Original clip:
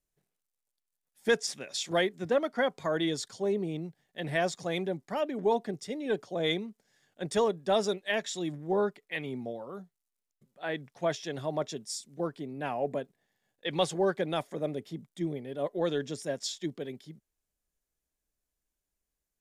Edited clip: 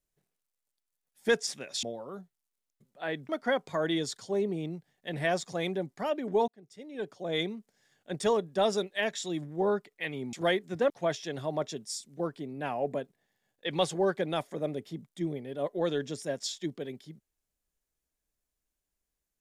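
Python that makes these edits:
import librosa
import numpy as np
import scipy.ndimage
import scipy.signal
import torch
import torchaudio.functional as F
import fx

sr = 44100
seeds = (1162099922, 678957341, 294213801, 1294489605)

y = fx.edit(x, sr, fx.swap(start_s=1.83, length_s=0.57, other_s=9.44, other_length_s=1.46),
    fx.fade_in_span(start_s=5.59, length_s=1.08), tone=tone)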